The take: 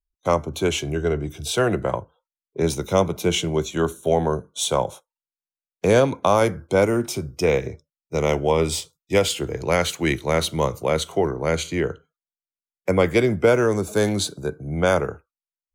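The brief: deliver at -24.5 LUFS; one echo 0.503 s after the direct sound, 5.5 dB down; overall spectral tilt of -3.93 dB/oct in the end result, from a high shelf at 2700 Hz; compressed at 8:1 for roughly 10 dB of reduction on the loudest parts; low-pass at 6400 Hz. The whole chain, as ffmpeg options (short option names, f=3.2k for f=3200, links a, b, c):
-af "lowpass=6.4k,highshelf=f=2.7k:g=8.5,acompressor=threshold=-22dB:ratio=8,aecho=1:1:503:0.531,volume=2.5dB"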